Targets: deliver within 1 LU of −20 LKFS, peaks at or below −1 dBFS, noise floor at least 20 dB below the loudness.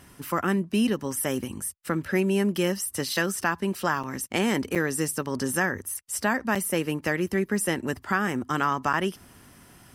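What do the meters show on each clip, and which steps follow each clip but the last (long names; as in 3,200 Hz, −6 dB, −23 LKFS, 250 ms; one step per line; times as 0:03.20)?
number of dropouts 4; longest dropout 6.2 ms; integrated loudness −27.0 LKFS; sample peak −9.5 dBFS; target loudness −20.0 LKFS
→ repair the gap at 0:04.03/0:04.75/0:06.55/0:08.93, 6.2 ms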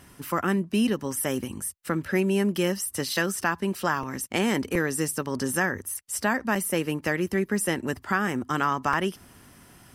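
number of dropouts 0; integrated loudness −27.0 LKFS; sample peak −9.5 dBFS; target loudness −20.0 LKFS
→ level +7 dB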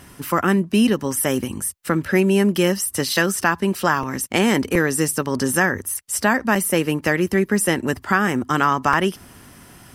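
integrated loudness −20.0 LKFS; sample peak −2.5 dBFS; background noise floor −47 dBFS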